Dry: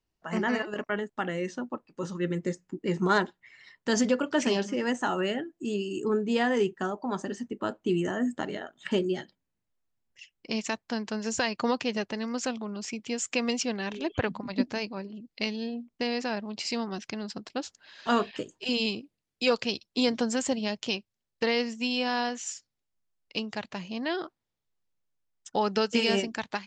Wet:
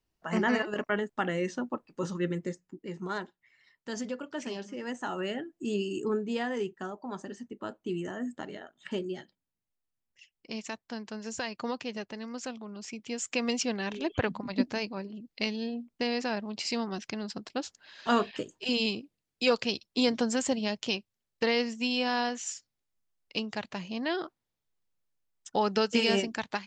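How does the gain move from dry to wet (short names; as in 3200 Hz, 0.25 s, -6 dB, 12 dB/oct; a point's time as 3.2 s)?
2.12 s +1 dB
2.92 s -11 dB
4.58 s -11 dB
5.83 s +0.5 dB
6.46 s -7 dB
12.63 s -7 dB
13.61 s -0.5 dB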